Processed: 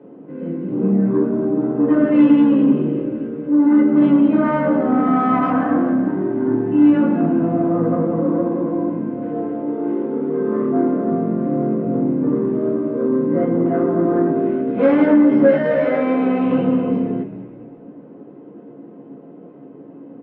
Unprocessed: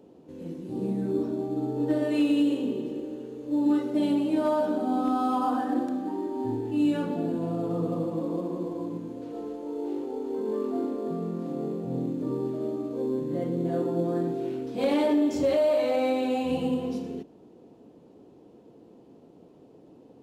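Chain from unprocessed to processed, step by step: LPF 2800 Hz 24 dB/oct; soft clip -22 dBFS, distortion -15 dB; frequency-shifting echo 0.204 s, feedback 52%, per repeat -70 Hz, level -12.5 dB; reverb RT60 0.20 s, pre-delay 3 ms, DRR -1 dB; gain -1 dB

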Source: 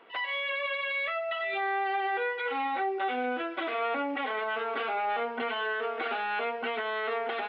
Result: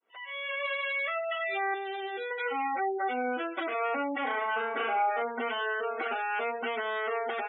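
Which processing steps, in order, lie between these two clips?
opening faded in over 0.67 s; 1.74–2.31 ten-band EQ 125 Hz +5 dB, 250 Hz +10 dB, 500 Hz -5 dB, 1000 Hz -11 dB, 2000 Hz -7 dB, 4000 Hz +8 dB; spectral gate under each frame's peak -20 dB strong; 4.18–5.22 flutter echo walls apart 6.1 m, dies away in 0.43 s

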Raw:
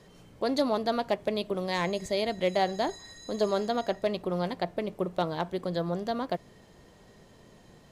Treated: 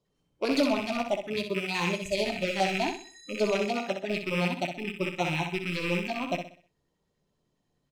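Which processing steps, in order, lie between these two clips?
rattling part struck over -41 dBFS, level -21 dBFS; in parallel at -11.5 dB: sine folder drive 9 dB, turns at -13 dBFS; on the sum: reverb RT60 0.30 s, pre-delay 7 ms, DRR 11.5 dB; LFO notch square 10 Hz 630–1800 Hz; spectral noise reduction 20 dB; on a send: feedback echo 63 ms, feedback 40%, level -5 dB; on the sum: upward expander 1.5:1, over -32 dBFS; gain -2.5 dB

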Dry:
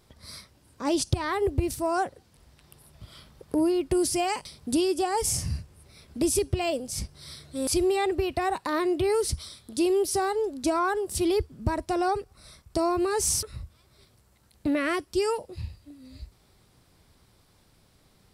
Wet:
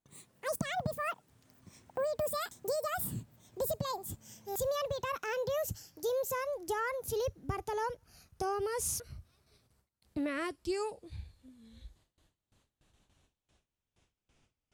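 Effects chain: speed glide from 188% -> 61%; gate with hold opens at -50 dBFS; gain -9 dB

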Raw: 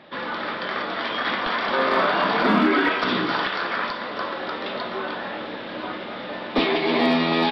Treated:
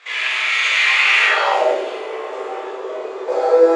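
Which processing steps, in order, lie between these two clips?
resonant low shelf 130 Hz -8 dB, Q 1.5; limiter -14 dBFS, peak gain reduction 5.5 dB; Schroeder reverb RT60 2.5 s, combs from 28 ms, DRR -7.5 dB; band-pass sweep 1100 Hz -> 210 Hz, 2.49–3.58; speed mistake 7.5 ips tape played at 15 ips; gain +6 dB

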